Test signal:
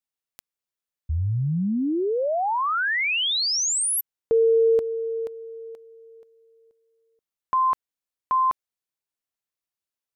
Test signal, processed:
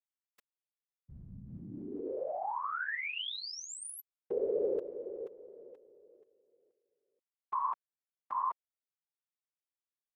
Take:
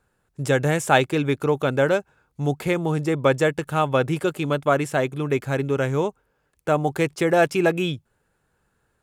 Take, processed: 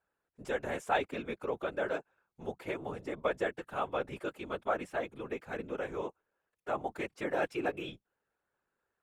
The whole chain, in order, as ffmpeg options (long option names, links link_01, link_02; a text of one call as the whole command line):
ffmpeg -i in.wav -af "bass=frequency=250:gain=-13,treble=frequency=4000:gain=-9,afftfilt=real='hypot(re,im)*cos(2*PI*random(0))':imag='hypot(re,im)*sin(2*PI*random(1))':win_size=512:overlap=0.75,volume=-6.5dB" out.wav